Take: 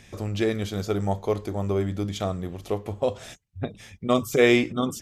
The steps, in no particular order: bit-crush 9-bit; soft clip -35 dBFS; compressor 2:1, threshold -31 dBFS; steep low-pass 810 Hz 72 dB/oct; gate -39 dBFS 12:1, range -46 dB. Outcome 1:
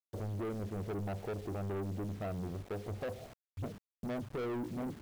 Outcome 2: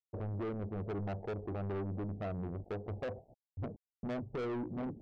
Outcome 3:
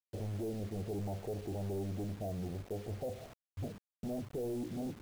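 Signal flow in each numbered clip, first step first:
gate > steep low-pass > compressor > bit-crush > soft clip; compressor > gate > bit-crush > steep low-pass > soft clip; gate > compressor > soft clip > steep low-pass > bit-crush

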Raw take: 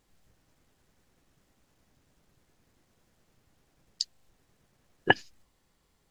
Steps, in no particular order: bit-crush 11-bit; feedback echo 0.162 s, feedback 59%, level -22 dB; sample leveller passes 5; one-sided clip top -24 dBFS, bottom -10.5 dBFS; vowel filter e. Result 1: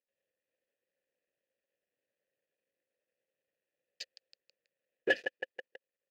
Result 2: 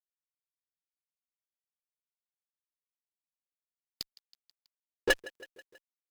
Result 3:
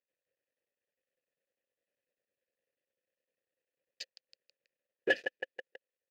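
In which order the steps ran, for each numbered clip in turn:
feedback echo > bit-crush > one-sided clip > sample leveller > vowel filter; vowel filter > sample leveller > feedback echo > bit-crush > one-sided clip; feedback echo > one-sided clip > bit-crush > sample leveller > vowel filter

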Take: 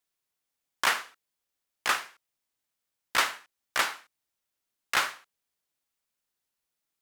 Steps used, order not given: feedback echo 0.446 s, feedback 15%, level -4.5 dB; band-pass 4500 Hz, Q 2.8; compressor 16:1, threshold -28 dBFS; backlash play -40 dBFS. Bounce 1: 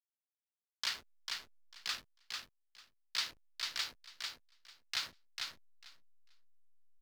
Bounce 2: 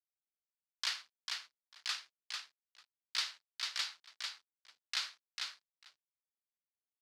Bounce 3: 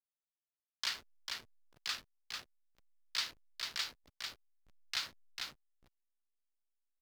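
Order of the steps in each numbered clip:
band-pass > backlash > feedback echo > compressor; feedback echo > backlash > band-pass > compressor; band-pass > compressor > feedback echo > backlash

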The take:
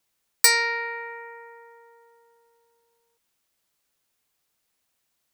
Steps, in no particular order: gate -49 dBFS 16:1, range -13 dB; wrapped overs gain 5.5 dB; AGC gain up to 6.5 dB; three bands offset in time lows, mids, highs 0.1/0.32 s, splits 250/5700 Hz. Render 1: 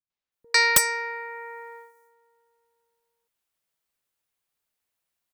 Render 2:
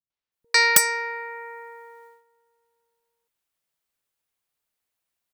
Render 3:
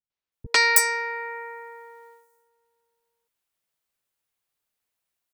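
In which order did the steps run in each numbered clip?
gate > three bands offset in time > AGC > wrapped overs; three bands offset in time > wrapped overs > AGC > gate; wrapped overs > AGC > gate > three bands offset in time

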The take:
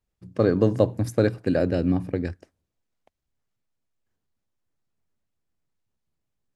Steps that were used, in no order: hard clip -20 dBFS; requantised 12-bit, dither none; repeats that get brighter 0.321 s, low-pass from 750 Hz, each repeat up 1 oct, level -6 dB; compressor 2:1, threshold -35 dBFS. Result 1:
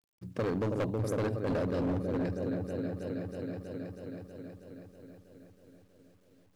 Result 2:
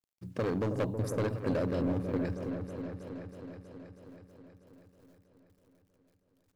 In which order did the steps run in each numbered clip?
repeats that get brighter > hard clip > compressor > requantised; hard clip > compressor > requantised > repeats that get brighter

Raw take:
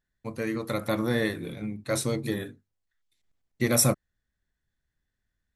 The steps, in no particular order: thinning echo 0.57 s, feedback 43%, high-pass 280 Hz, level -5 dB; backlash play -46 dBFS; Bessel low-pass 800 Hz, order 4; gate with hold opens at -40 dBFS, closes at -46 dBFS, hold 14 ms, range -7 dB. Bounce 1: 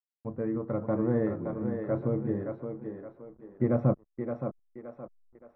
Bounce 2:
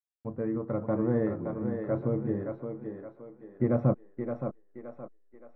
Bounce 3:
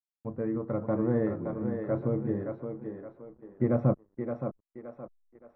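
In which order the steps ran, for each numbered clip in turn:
thinning echo > gate with hold > backlash > Bessel low-pass; backlash > thinning echo > gate with hold > Bessel low-pass; thinning echo > backlash > gate with hold > Bessel low-pass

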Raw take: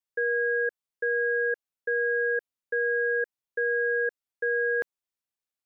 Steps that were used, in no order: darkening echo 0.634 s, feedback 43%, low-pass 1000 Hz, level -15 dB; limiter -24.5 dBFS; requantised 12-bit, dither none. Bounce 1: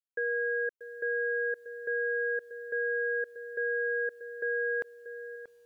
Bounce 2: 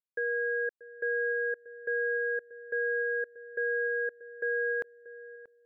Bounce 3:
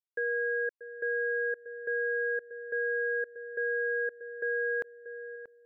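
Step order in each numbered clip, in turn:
darkening echo > requantised > limiter; requantised > limiter > darkening echo; requantised > darkening echo > limiter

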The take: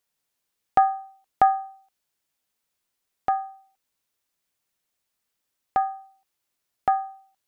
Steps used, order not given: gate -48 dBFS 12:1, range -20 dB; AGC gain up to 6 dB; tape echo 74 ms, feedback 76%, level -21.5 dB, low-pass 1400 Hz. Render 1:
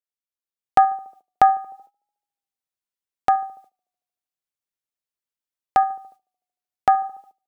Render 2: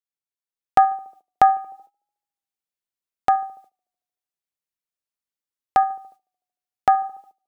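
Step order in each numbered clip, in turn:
tape echo > AGC > gate; AGC > tape echo > gate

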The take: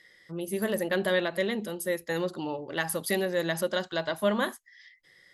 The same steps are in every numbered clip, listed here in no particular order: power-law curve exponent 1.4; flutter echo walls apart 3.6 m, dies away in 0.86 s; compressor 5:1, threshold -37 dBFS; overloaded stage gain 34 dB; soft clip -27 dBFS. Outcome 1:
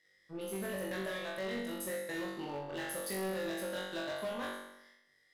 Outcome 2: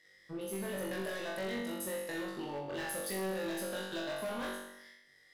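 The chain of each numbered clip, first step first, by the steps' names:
power-law curve > compressor > soft clip > flutter echo > overloaded stage; soft clip > compressor > power-law curve > flutter echo > overloaded stage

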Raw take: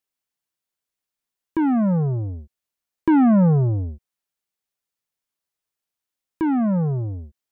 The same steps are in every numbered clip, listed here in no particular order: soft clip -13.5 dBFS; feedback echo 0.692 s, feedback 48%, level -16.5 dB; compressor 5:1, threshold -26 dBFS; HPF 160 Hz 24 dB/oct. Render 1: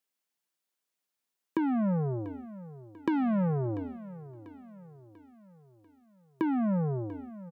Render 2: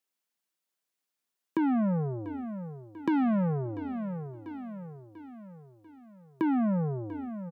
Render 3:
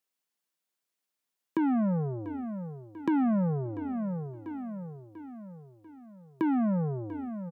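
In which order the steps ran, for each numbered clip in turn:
soft clip > HPF > compressor > feedback echo; soft clip > feedback echo > compressor > HPF; feedback echo > compressor > soft clip > HPF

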